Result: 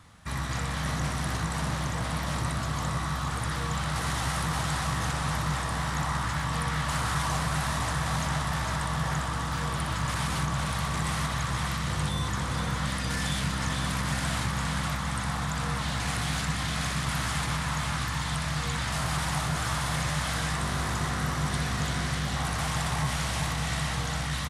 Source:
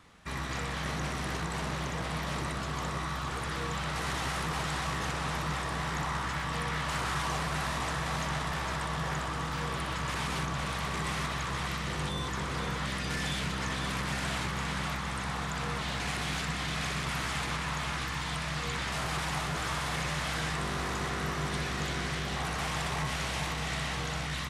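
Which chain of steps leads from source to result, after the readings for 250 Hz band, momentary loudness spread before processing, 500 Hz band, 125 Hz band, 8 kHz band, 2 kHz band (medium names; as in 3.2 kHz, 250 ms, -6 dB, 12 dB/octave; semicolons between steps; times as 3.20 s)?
+4.0 dB, 2 LU, +0.5 dB, +6.0 dB, +5.5 dB, +1.5 dB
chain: fifteen-band graphic EQ 100 Hz +10 dB, 400 Hz -7 dB, 2.5 kHz -4 dB, 10 kHz +5 dB; delay 424 ms -10.5 dB; trim +3 dB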